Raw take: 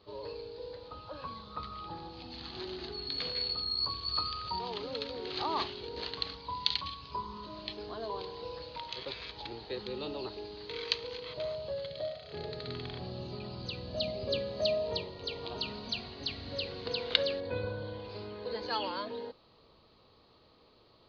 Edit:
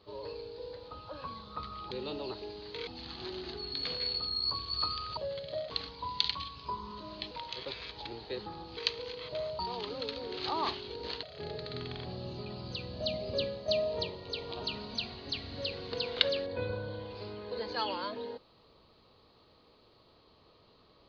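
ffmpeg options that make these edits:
-filter_complex "[0:a]asplit=11[a][b][c][d][e][f][g][h][i][j][k];[a]atrim=end=1.912[l];[b]atrim=start=9.858:end=10.822[m];[c]atrim=start=2.218:end=4.522[n];[d]atrim=start=11.638:end=12.172[o];[e]atrim=start=6.158:end=7.772[p];[f]atrim=start=8.708:end=9.862[q];[g]atrim=start=1.908:end=2.222[r];[h]atrim=start=10.818:end=11.642[s];[i]atrim=start=4.518:end=6.162[t];[j]atrim=start=12.168:end=14.62,asetpts=PTS-STARTPTS,afade=t=out:st=2.152:d=0.3:c=qsin:silence=0.421697[u];[k]atrim=start=14.62,asetpts=PTS-STARTPTS,afade=t=in:d=0.004:c=hsin:silence=0.421697[v];[l][m]acrossfade=d=0.004:c1=hsin:c2=hsin[w];[w][n]acrossfade=d=0.004:c1=hsin:c2=hsin[x];[x][o]acrossfade=d=0.004:c1=hsin:c2=hsin[y];[y][p]acrossfade=d=0.004:c1=hsin:c2=hsin[z];[z][q]acrossfade=d=0.004:c1=hsin:c2=hsin[aa];[aa][r]acrossfade=d=0.004:c1=hsin:c2=hsin[ab];[ab][s]acrossfade=d=0.004:c1=hsin:c2=hsin[ac];[ac][t]acrossfade=d=0.004:c1=hsin:c2=hsin[ad];[u][v]concat=n=2:v=0:a=1[ae];[ad][ae]acrossfade=d=0.004:c1=hsin:c2=hsin"

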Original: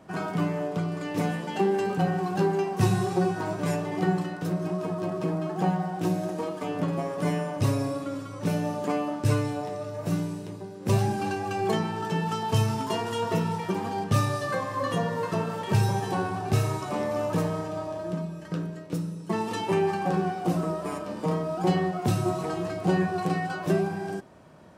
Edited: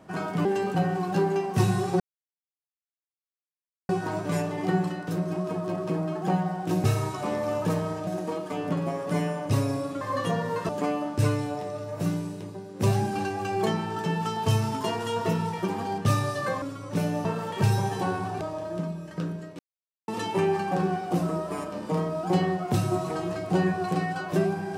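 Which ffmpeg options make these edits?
-filter_complex "[0:a]asplit=12[a][b][c][d][e][f][g][h][i][j][k][l];[a]atrim=end=0.452[m];[b]atrim=start=1.678:end=3.23,asetpts=PTS-STARTPTS,afade=t=out:st=1.548:d=0.004:c=hsin,apad=pad_dur=1.89[n];[c]atrim=start=3.23:end=6.182,asetpts=PTS-STARTPTS,afade=t=in:d=0.004:c=hsin[o];[d]atrim=start=16.518:end=17.752[p];[e]atrim=start=6.178:end=8.122[q];[f]atrim=start=14.678:end=15.362[r];[g]atrim=start=8.748:end=14.682[s];[h]atrim=start=8.118:end=8.752[t];[i]atrim=start=15.358:end=16.522[u];[j]atrim=start=17.748:end=18.93,asetpts=PTS-STARTPTS,afade=t=out:st=1.178:d=0.004:c=hsin[v];[k]atrim=start=18.93:end=19.42,asetpts=PTS-STARTPTS,volume=0[w];[l]atrim=start=19.42,asetpts=PTS-STARTPTS,afade=t=in:d=0.004:c=hsin[x];[n][o]concat=n=2:v=0:a=1[y];[m][y]acrossfade=d=0.004:c1=hsin:c2=hsin[z];[z][p]acrossfade=d=0.004:c1=hsin:c2=hsin[aa];[aa][q]acrossfade=d=0.004:c1=hsin:c2=hsin[ab];[ab][r]acrossfade=d=0.004:c1=hsin:c2=hsin[ac];[ac][s]acrossfade=d=0.004:c1=hsin:c2=hsin[ad];[ad][t]acrossfade=d=0.004:c1=hsin:c2=hsin[ae];[ae][u]acrossfade=d=0.004:c1=hsin:c2=hsin[af];[v][w][x]concat=n=3:v=0:a=1[ag];[af][ag]acrossfade=d=0.004:c1=hsin:c2=hsin"

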